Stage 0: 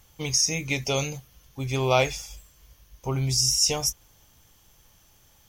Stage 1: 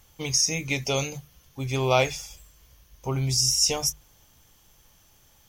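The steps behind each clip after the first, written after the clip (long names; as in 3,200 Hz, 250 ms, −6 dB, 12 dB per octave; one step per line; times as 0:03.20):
mains-hum notches 50/100/150 Hz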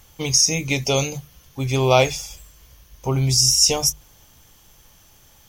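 dynamic equaliser 1,700 Hz, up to −5 dB, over −44 dBFS, Q 1.4
level +6.5 dB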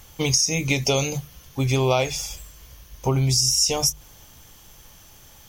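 downward compressor 5 to 1, threshold −21 dBFS, peak gain reduction 10.5 dB
level +3.5 dB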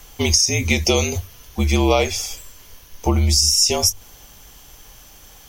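frequency shifter −53 Hz
level +4 dB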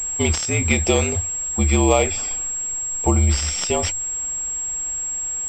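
switching amplifier with a slow clock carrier 7,600 Hz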